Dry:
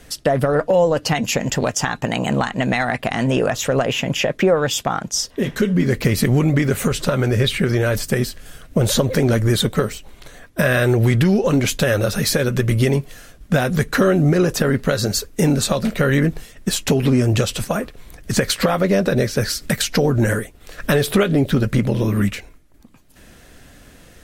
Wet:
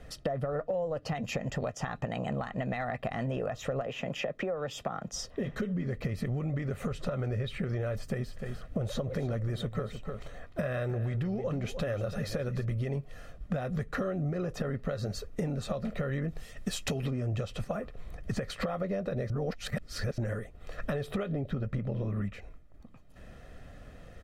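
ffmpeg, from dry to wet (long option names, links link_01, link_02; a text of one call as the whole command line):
ffmpeg -i in.wav -filter_complex "[0:a]asettb=1/sr,asplit=3[link_01][link_02][link_03];[link_01]atrim=end=3.814[link_04];[link_02]atrim=start=3.81:end=5.12,asetpts=PTS-STARTPTS,afade=type=in:duration=0.004:curve=qsin,afade=type=out:start_time=1.306:duration=0.004:curve=qsin,acrossover=split=180|390[link_05][link_06][link_07];[link_05]acompressor=threshold=-38dB:ratio=4[link_08];[link_06]acompressor=threshold=-25dB:ratio=4[link_09];[link_07]acompressor=threshold=-20dB:ratio=4[link_10];[link_08][link_09][link_10]amix=inputs=3:normalize=0[link_11];[link_03]atrim=start=5.116[link_12];[link_04][link_11]acrossfade=duration=0.004:curve1=hsin:curve2=qsin[link_13];[link_13][link_12]acrossfade=duration=0.004:curve1=qsin:curve2=hsin,asplit=3[link_14][link_15][link_16];[link_14]afade=type=out:start_time=8.27:duration=0.02[link_17];[link_15]aecho=1:1:301:0.2,afade=type=in:start_time=8.27:duration=0.02,afade=type=out:start_time=12.64:duration=0.02[link_18];[link_16]afade=type=in:start_time=12.64:duration=0.02[link_19];[link_17][link_18][link_19]amix=inputs=3:normalize=0,asettb=1/sr,asplit=3[link_20][link_21][link_22];[link_20]atrim=end=16.284[link_23];[link_21]atrim=start=16.28:end=17.11,asetpts=PTS-STARTPTS,afade=type=in:duration=0.004:curve=qsin,afade=type=out:start_time=0.826:duration=0.004:curve=qsin,highshelf=frequency=2600:gain=11[link_24];[link_22]atrim=start=17.106[link_25];[link_23][link_24]acrossfade=duration=0.004:curve1=hsin:curve2=qsin[link_26];[link_26][link_25]acrossfade=duration=0.004:curve1=qsin:curve2=hsin,asettb=1/sr,asplit=3[link_27][link_28][link_29];[link_27]atrim=end=21.304[link_30];[link_28]atrim=start=21.3:end=22.35,asetpts=PTS-STARTPTS,afade=type=in:duration=0.004:curve=qsin,afade=type=out:start_time=1.046:duration=0.004:curve=qsin,highshelf=frequency=4300:gain=-6[link_31];[link_29]atrim=start=22.346[link_32];[link_30][link_31]acrossfade=duration=0.004:curve1=hsin:curve2=qsin[link_33];[link_33][link_32]acrossfade=duration=0.004:curve1=qsin:curve2=hsin,asplit=3[link_34][link_35][link_36];[link_34]atrim=end=19.302[link_37];[link_35]atrim=start=19.298:end=20.182,asetpts=PTS-STARTPTS,areverse[link_38];[link_36]atrim=start=20.178[link_39];[link_37][link_38]acrossfade=duration=0.004:curve1=hsin:curve2=hsin[link_40];[link_40][link_39]acrossfade=duration=0.004:curve1=hsin:curve2=hsin,lowpass=frequency=1300:poles=1,aecho=1:1:1.6:0.43,acompressor=threshold=-27dB:ratio=5,volume=-4dB" out.wav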